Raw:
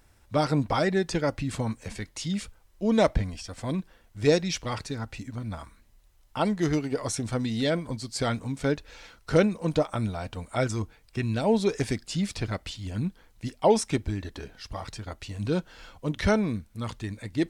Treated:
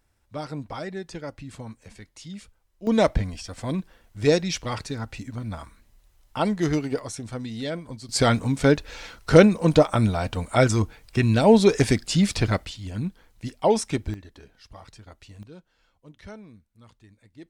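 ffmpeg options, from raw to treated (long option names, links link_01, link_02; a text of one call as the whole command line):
ffmpeg -i in.wav -af "asetnsamples=nb_out_samples=441:pad=0,asendcmd='2.87 volume volume 2dB;6.99 volume volume -4.5dB;8.09 volume volume 8dB;12.65 volume volume 0.5dB;14.14 volume volume -9dB;15.43 volume volume -19dB',volume=-9dB" out.wav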